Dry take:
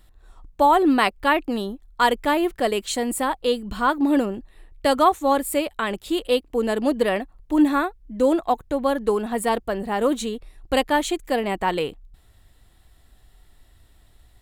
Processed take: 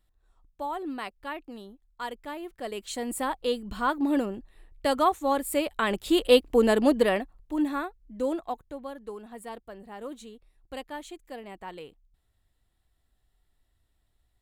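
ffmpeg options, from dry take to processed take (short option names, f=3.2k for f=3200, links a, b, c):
-af "volume=3dB,afade=t=in:st=2.52:d=0.72:silence=0.281838,afade=t=in:st=5.42:d=1.04:silence=0.354813,afade=t=out:st=6.46:d=1.07:silence=0.237137,afade=t=out:st=8.25:d=0.67:silence=0.375837"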